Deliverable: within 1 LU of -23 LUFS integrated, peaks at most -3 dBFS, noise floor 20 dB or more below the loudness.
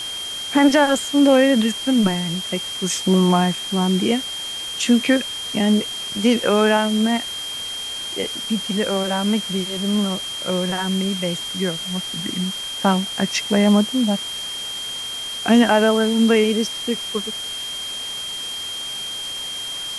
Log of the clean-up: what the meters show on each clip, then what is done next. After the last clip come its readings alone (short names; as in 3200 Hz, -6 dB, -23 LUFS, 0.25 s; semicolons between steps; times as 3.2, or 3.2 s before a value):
steady tone 3200 Hz; tone level -27 dBFS; noise floor -29 dBFS; noise floor target -40 dBFS; loudness -20.0 LUFS; peak -2.5 dBFS; loudness target -23.0 LUFS
-> notch 3200 Hz, Q 30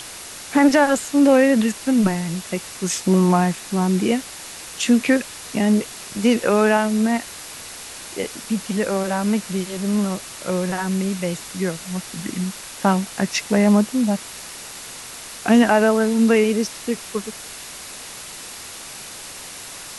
steady tone none; noise floor -36 dBFS; noise floor target -40 dBFS
-> noise print and reduce 6 dB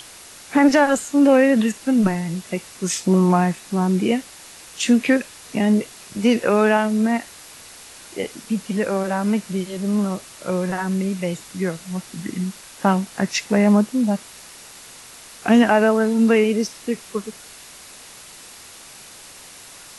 noise floor -42 dBFS; loudness -20.0 LUFS; peak -3.0 dBFS; loudness target -23.0 LUFS
-> gain -3 dB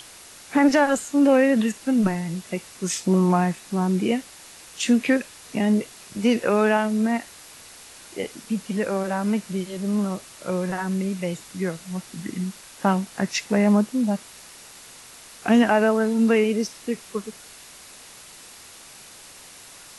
loudness -23.0 LUFS; peak -6.0 dBFS; noise floor -45 dBFS